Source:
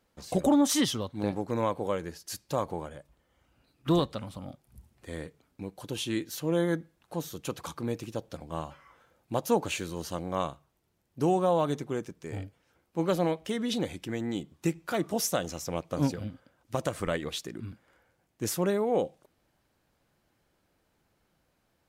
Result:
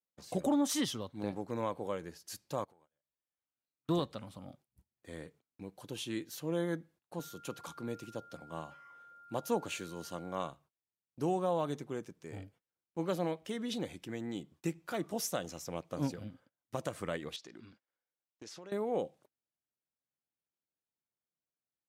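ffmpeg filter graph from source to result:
-filter_complex "[0:a]asettb=1/sr,asplit=3[a][b][c];[a]atrim=end=2.644[d];[b]atrim=start=2.64:end=3.89,asetpts=PTS-STARTPTS,afade=t=in:d=0.004:c=qsin,afade=t=out:st=1.246:d=0.004:c=qsin,lowshelf=f=400:g=-8.5,acompressor=threshold=-55dB:ratio=12:attack=3.2:release=140:knee=1:detection=peak[e];[c]atrim=start=3.886[f];[d][e]acrossfade=d=0.004:c1=hsin:c2=qsin[g];[g][f]acrossfade=d=0.004:c1=qsin:c2=hsin,asettb=1/sr,asplit=3[h][i][j];[h]atrim=end=7.194[k];[i]atrim=start=7.19:end=10.5,asetpts=PTS-STARTPTS,afade=t=in:d=0.004:c=qsin,afade=t=out:st=3.306:d=0.004:c=qsin,aeval=exprs='val(0)+0.00447*sin(2*PI*1400*n/s)':c=same,highpass=93[l];[j]atrim=start=10.496[m];[k][l]acrossfade=d=0.004:c1=hsin:c2=qsin[n];[n][m]acrossfade=d=0.004:c1=qsin:c2=hsin,asettb=1/sr,asplit=3[o][p][q];[o]atrim=end=17.364[r];[p]atrim=start=17.36:end=18.72,asetpts=PTS-STARTPTS,afade=t=in:d=0.004:c=qsin,afade=t=out:st=1.356:d=0.004:c=qsin,lowpass=f=5k:t=q:w=1.8,equalizer=f=120:w=0.75:g=-11.5,acompressor=threshold=-38dB:ratio=10:attack=3.2:release=140:knee=1:detection=peak[s];[q]atrim=start=18.716[t];[r][s]acrossfade=d=0.004:c1=hsin:c2=qsin[u];[u][t]acrossfade=d=0.004:c1=qsin:c2=hsin,highpass=94,agate=range=-23dB:threshold=-54dB:ratio=16:detection=peak,volume=-7dB"

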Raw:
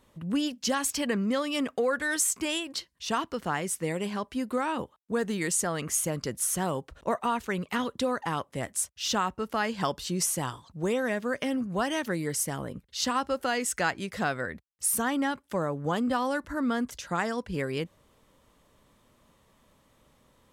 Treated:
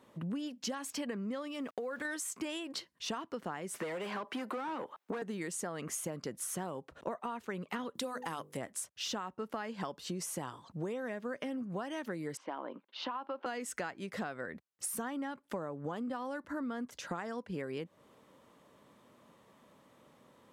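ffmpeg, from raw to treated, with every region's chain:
-filter_complex "[0:a]asettb=1/sr,asplit=3[a][b][c];[a]atrim=end=1.474[d];[b]atrim=start=1.47:end=2.05,asetpts=PTS-STARTPTS,afade=t=in:d=0.004:c=qsin,afade=t=out:st=0.576:d=0.004:c=qsin,acompressor=threshold=-31dB:ratio=4:attack=3.2:release=140:knee=1:detection=peak,aeval=exprs='val(0)*gte(abs(val(0)),0.00282)':c=same[e];[c]atrim=start=2.046[f];[d][e]acrossfade=d=0.004:c1=hsin:c2=qsin[g];[g][f]acrossfade=d=0.004:c1=qsin:c2=hsin,asettb=1/sr,asplit=3[h][i][j];[h]atrim=end=3.744[k];[i]atrim=start=3.74:end=5.22,asetpts=PTS-STARTPTS,afade=t=in:d=0.004:c=qsin,afade=t=out:st=1.476:d=0.004:c=qsin,highshelf=f=12k:g=11.5,asplit=2[l][m];[m]highpass=f=720:p=1,volume=24dB,asoftclip=type=tanh:threshold=-17dB[n];[l][n]amix=inputs=2:normalize=0,lowpass=f=1.9k:p=1,volume=-6dB,acrossover=split=270|630[o][p][q];[o]acompressor=threshold=-42dB:ratio=4[r];[p]acompressor=threshold=-37dB:ratio=4[s];[q]acompressor=threshold=-32dB:ratio=4[t];[r][s][t]amix=inputs=3:normalize=0[u];[j]atrim=start=5.216[v];[k][u]acrossfade=d=0.004:c1=hsin:c2=qsin[w];[w][v]acrossfade=d=0.004:c1=qsin:c2=hsin,asettb=1/sr,asplit=3[x][y][z];[x]atrim=end=7.954[aa];[y]atrim=start=7.95:end=8.57,asetpts=PTS-STARTPTS,afade=t=in:d=0.004:c=qsin,afade=t=out:st=0.616:d=0.004:c=qsin,aemphasis=mode=production:type=75kf,bandreject=f=50:t=h:w=6,bandreject=f=100:t=h:w=6,bandreject=f=150:t=h:w=6,bandreject=f=200:t=h:w=6,bandreject=f=250:t=h:w=6,bandreject=f=300:t=h:w=6,bandreject=f=350:t=h:w=6,bandreject=f=400:t=h:w=6,bandreject=f=450:t=h:w=6,bandreject=f=500:t=h:w=6[ab];[z]atrim=start=8.566[ac];[aa][ab]acrossfade=d=0.004:c1=hsin:c2=qsin[ad];[ad][ac]acrossfade=d=0.004:c1=qsin:c2=hsin,asettb=1/sr,asplit=3[ae][af][ag];[ae]atrim=end=12.374[ah];[af]atrim=start=12.37:end=13.46,asetpts=PTS-STARTPTS,afade=t=in:d=0.004:c=qsin,afade=t=out:st=1.086:d=0.004:c=qsin,highpass=f=300:w=0.5412,highpass=f=300:w=1.3066,equalizer=f=440:t=q:w=4:g=-9,equalizer=f=960:t=q:w=4:g=7,equalizer=f=1.9k:t=q:w=4:g=-7,lowpass=f=3.3k:w=0.5412,lowpass=f=3.3k:w=1.3066,acompressor=threshold=-33dB:ratio=2:attack=3.2:release=140:knee=1:detection=peak[ai];[ag]atrim=start=13.456[aj];[ah][ai]acrossfade=d=0.004:c1=hsin:c2=qsin[ak];[ak][aj]acrossfade=d=0.004:c1=qsin:c2=hsin,highpass=170,highshelf=f=2.6k:g=-8.5,acompressor=threshold=-39dB:ratio=10,volume=3.5dB"

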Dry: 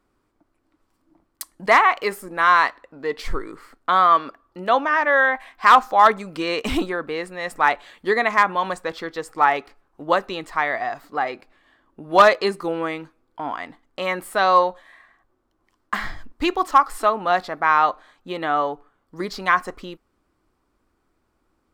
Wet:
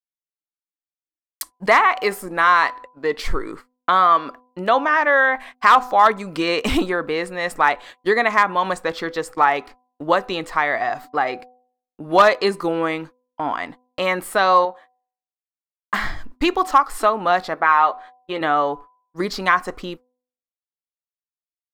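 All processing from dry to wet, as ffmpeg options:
-filter_complex "[0:a]asettb=1/sr,asplit=3[a][b][c];[a]atrim=end=14.654[d];[b]atrim=start=14.65:end=15.94,asetpts=PTS-STARTPTS,afade=t=in:d=0.004:c=qsin,afade=t=out:st=1.286:d=0.004:c=qsin,highpass=f=420:p=1,highshelf=f=2.5k:g=-11.5[e];[c]atrim=start=15.936[f];[d][e]acrossfade=d=0.004:c1=hsin:c2=qsin[g];[g][f]acrossfade=d=0.004:c1=qsin:c2=hsin,asettb=1/sr,asplit=3[h][i][j];[h]atrim=end=17.544[k];[i]atrim=start=17.54:end=18.41,asetpts=PTS-STARTPTS,afade=t=in:d=0.004:c=qsin,afade=t=out:st=0.866:d=0.004:c=qsin,deesser=0.35,bass=f=250:g=-11,treble=f=4k:g=-9,asplit=2[l][m];[m]adelay=12,volume=-7dB[n];[l][n]amix=inputs=2:normalize=0,atrim=end_sample=38367[o];[j]atrim=start=18.406[p];[k][o]acrossfade=d=0.004:c1=hsin:c2=qsin[q];[q][p]acrossfade=d=0.004:c1=qsin:c2=hsin,agate=range=-55dB:threshold=-40dB:ratio=16:detection=peak,bandreject=f=250.3:t=h:w=4,bandreject=f=500.6:t=h:w=4,bandreject=f=750.9:t=h:w=4,bandreject=f=1.0012k:t=h:w=4,acompressor=threshold=-23dB:ratio=1.5,volume=5dB"

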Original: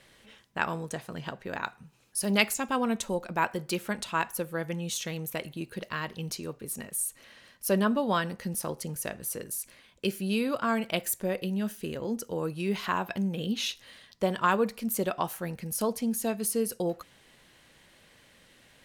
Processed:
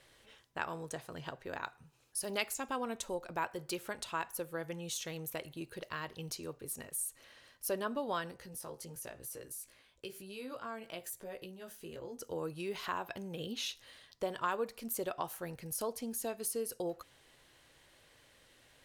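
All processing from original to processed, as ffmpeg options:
-filter_complex "[0:a]asettb=1/sr,asplit=3[a][b][c];[a]atrim=end=8.314[d];[b]atrim=start=8.31:end=12.21,asetpts=PTS-STARTPTS,afade=t=in:d=0.004:c=qsin,afade=t=out:st=3.896:d=0.004:c=qsin,flanger=delay=15:depth=2.8:speed=1,acompressor=threshold=-38dB:ratio=2:attack=3.2:release=140:knee=1:detection=peak[e];[c]atrim=start=12.206[f];[d][e]acrossfade=d=0.004:c1=hsin:c2=qsin[g];[g][f]acrossfade=d=0.004:c1=qsin:c2=hsin,equalizer=f=200:w=3.3:g=-13,acompressor=threshold=-34dB:ratio=1.5,equalizer=f=2.2k:w=1.5:g=-2.5,volume=-4dB"

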